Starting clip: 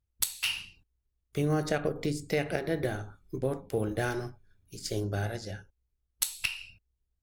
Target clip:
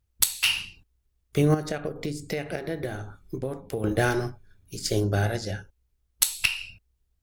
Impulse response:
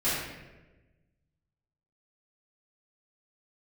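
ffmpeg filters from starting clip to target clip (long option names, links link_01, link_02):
-filter_complex "[0:a]asettb=1/sr,asplit=3[link_01][link_02][link_03];[link_01]atrim=end=1.544[link_04];[link_02]atrim=start=1.54:end=3.84,asetpts=PTS-STARTPTS,afade=type=in:duration=0.004:curve=qsin,afade=type=out:start_time=2.296:duration=0.004:curve=qsin,acompressor=threshold=-39dB:ratio=2.5[link_05];[link_03]atrim=start=3.836[link_06];[link_04][link_05]acrossfade=duration=0.004:curve1=hsin:curve2=qsin[link_07];[link_07][link_06]acrossfade=duration=0.004:curve1=qsin:curve2=hsin,volume=7.5dB"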